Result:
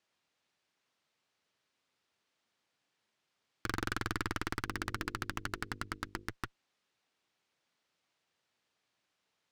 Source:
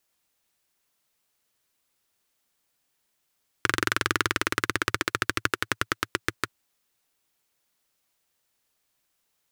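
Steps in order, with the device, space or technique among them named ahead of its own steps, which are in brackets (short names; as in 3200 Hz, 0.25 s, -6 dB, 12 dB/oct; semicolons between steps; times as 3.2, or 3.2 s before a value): valve radio (BPF 100–4600 Hz; tube stage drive 29 dB, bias 0.8; core saturation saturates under 220 Hz); 4.61–6.29 notches 50/100/150/200/250/300/350/400/450/500 Hz; gain +4 dB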